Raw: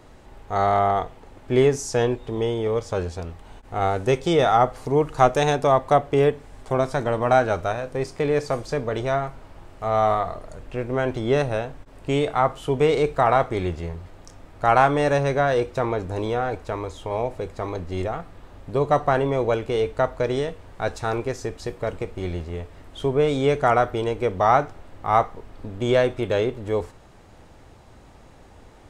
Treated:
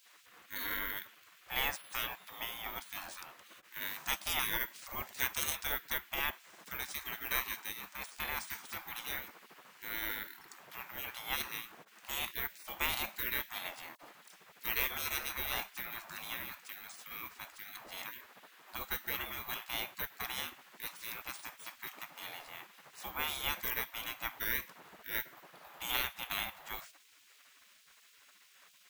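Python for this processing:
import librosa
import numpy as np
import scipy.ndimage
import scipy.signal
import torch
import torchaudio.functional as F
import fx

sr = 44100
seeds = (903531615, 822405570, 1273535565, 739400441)

y = np.repeat(x[::3], 3)[:len(x)]
y = fx.dispersion(y, sr, late='lows', ms=58.0, hz=1700.0, at=(13.95, 14.65))
y = fx.spec_gate(y, sr, threshold_db=-25, keep='weak')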